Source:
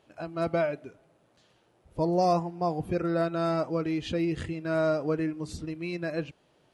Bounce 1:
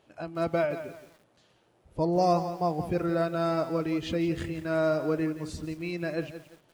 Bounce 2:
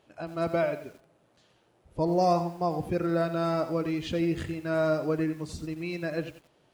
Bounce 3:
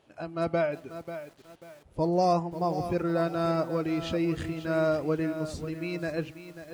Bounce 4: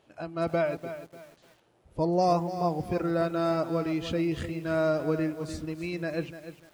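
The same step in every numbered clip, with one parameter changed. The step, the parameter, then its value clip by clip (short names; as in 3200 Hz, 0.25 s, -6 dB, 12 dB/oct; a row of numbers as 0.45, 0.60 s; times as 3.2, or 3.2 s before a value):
lo-fi delay, time: 172, 89, 540, 296 ms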